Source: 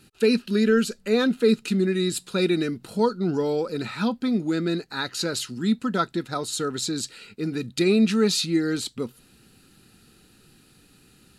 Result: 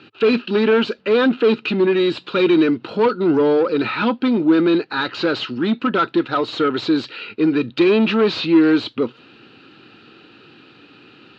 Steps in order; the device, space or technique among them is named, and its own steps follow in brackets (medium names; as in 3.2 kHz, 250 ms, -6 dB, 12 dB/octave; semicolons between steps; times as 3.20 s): overdrive pedal into a guitar cabinet (overdrive pedal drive 21 dB, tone 1.8 kHz, clips at -9.5 dBFS; cabinet simulation 110–3900 Hz, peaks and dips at 110 Hz +4 dB, 190 Hz -5 dB, 310 Hz +5 dB, 720 Hz -4 dB, 1.9 kHz -5 dB, 2.8 kHz +4 dB); trim +2.5 dB